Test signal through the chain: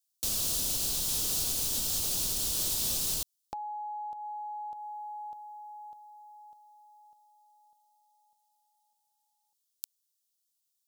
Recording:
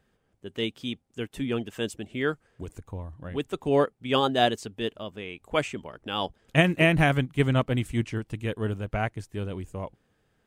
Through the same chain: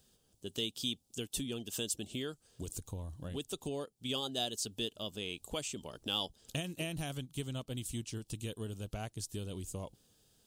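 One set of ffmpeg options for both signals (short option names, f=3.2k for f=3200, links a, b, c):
-af "tiltshelf=f=1.1k:g=4.5,acompressor=threshold=-31dB:ratio=6,aexciter=amount=6.2:drive=9.4:freq=3.1k,volume=-6.5dB"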